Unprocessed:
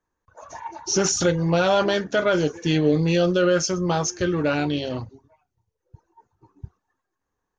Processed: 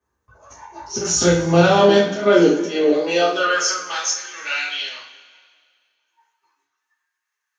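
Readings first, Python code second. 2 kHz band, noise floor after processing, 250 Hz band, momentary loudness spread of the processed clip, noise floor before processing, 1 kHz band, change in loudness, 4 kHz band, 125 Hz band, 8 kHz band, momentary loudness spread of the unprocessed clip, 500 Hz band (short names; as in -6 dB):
+6.0 dB, -80 dBFS, +2.5 dB, 12 LU, -81 dBFS, +5.5 dB, +4.0 dB, +5.5 dB, 0.0 dB, +4.5 dB, 10 LU, +4.5 dB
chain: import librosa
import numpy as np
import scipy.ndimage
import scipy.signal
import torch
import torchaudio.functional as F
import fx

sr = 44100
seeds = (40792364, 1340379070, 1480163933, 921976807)

y = fx.auto_swell(x, sr, attack_ms=169.0)
y = fx.filter_sweep_highpass(y, sr, from_hz=72.0, to_hz=2000.0, start_s=1.41, end_s=4.05, q=1.8)
y = fx.rev_double_slope(y, sr, seeds[0], early_s=0.4, late_s=2.0, knee_db=-18, drr_db=-8.5)
y = F.gain(torch.from_numpy(y), -3.0).numpy()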